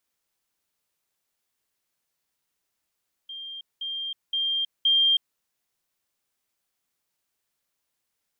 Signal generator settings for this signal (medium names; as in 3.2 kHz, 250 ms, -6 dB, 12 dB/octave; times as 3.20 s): level ladder 3.19 kHz -35 dBFS, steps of 6 dB, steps 4, 0.32 s 0.20 s